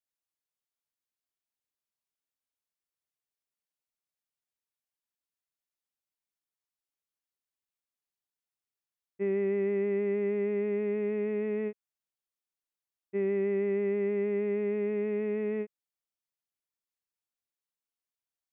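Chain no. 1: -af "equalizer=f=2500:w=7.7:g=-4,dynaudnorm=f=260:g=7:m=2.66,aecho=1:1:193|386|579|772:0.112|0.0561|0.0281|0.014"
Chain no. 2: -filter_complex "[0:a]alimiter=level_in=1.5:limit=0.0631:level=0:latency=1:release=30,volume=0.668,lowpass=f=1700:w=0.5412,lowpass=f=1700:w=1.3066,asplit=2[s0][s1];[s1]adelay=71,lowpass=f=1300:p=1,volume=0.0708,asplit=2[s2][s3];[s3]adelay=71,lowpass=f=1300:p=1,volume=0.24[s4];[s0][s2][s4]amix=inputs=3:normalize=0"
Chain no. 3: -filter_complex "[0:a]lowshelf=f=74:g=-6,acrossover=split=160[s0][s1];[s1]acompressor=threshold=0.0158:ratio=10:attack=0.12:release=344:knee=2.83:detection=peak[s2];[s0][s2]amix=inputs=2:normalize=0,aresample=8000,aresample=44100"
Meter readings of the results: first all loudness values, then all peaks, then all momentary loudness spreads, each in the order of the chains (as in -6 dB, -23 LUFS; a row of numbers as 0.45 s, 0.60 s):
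-22.0 LUFS, -35.0 LUFS, -39.0 LUFS; -13.0 dBFS, -27.0 dBFS, -32.0 dBFS; 6 LU, 4 LU, 4 LU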